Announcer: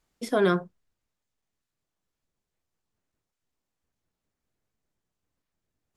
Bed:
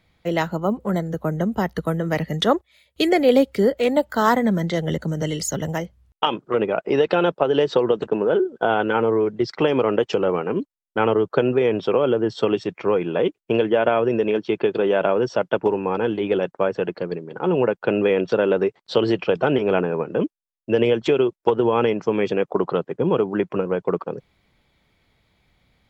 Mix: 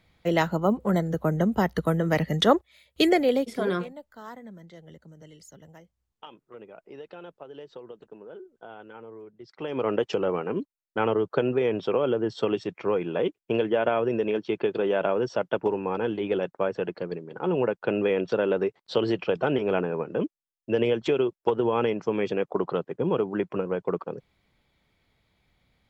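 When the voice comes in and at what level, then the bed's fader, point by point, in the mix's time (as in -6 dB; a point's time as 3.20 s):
3.25 s, -5.0 dB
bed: 3.06 s -1 dB
3.97 s -24.5 dB
9.42 s -24.5 dB
9.87 s -5.5 dB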